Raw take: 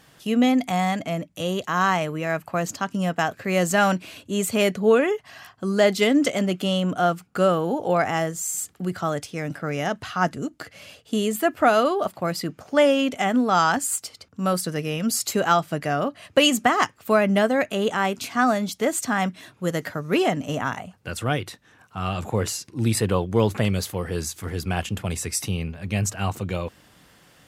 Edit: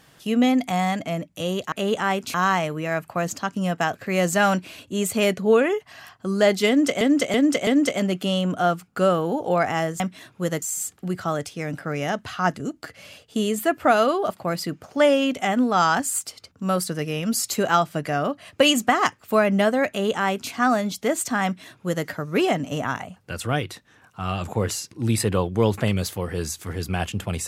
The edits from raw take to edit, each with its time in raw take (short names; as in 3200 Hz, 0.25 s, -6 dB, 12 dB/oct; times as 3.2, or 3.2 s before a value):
6.06–6.39 loop, 4 plays
17.66–18.28 copy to 1.72
19.22–19.84 copy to 8.39